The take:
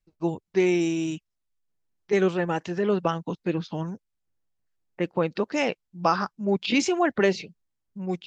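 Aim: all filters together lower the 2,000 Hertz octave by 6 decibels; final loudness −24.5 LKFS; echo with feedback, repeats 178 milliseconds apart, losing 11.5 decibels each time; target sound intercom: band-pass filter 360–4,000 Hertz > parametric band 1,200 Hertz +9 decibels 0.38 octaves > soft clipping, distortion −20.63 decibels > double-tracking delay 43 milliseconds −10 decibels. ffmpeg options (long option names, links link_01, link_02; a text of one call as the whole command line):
ffmpeg -i in.wav -filter_complex "[0:a]highpass=360,lowpass=4000,equalizer=frequency=1200:width_type=o:width=0.38:gain=9,equalizer=frequency=2000:width_type=o:gain=-9,aecho=1:1:178|356|534:0.266|0.0718|0.0194,asoftclip=threshold=-12.5dB,asplit=2[link_01][link_02];[link_02]adelay=43,volume=-10dB[link_03];[link_01][link_03]amix=inputs=2:normalize=0,volume=4dB" out.wav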